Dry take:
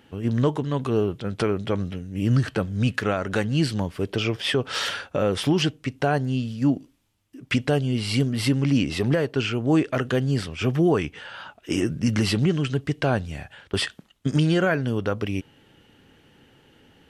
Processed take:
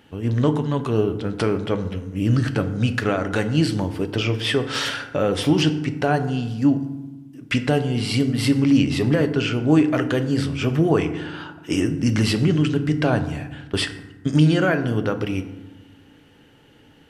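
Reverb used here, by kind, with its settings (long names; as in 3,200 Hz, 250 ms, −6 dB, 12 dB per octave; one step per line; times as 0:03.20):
feedback delay network reverb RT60 1.1 s, low-frequency decay 1.55×, high-frequency decay 0.5×, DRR 8 dB
level +1.5 dB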